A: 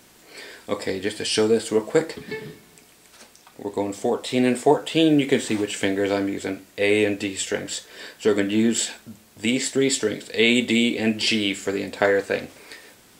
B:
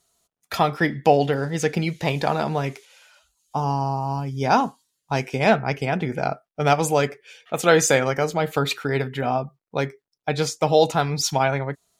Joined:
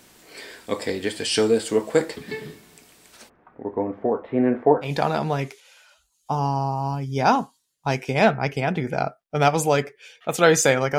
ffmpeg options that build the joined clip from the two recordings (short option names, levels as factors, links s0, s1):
-filter_complex "[0:a]asplit=3[s0][s1][s2];[s0]afade=t=out:st=3.28:d=0.02[s3];[s1]lowpass=f=1600:w=0.5412,lowpass=f=1600:w=1.3066,afade=t=in:st=3.28:d=0.02,afade=t=out:st=4.91:d=0.02[s4];[s2]afade=t=in:st=4.91:d=0.02[s5];[s3][s4][s5]amix=inputs=3:normalize=0,apad=whole_dur=10.98,atrim=end=10.98,atrim=end=4.91,asetpts=PTS-STARTPTS[s6];[1:a]atrim=start=2.06:end=8.23,asetpts=PTS-STARTPTS[s7];[s6][s7]acrossfade=d=0.1:c1=tri:c2=tri"